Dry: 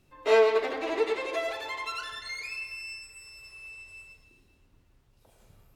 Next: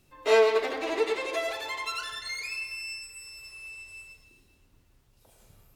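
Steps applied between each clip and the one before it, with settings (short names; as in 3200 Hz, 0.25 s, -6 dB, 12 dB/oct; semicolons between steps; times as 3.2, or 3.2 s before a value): high shelf 4500 Hz +7.5 dB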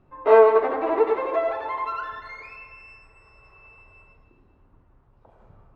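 synth low-pass 1100 Hz, resonance Q 1.7; gain +5.5 dB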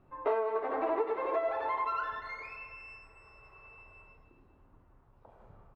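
bell 890 Hz +3 dB 2.7 oct; compressor 6:1, threshold -23 dBFS, peak gain reduction 15.5 dB; doubler 26 ms -13 dB; gain -5 dB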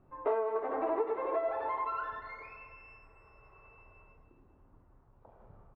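LPF 1400 Hz 6 dB/oct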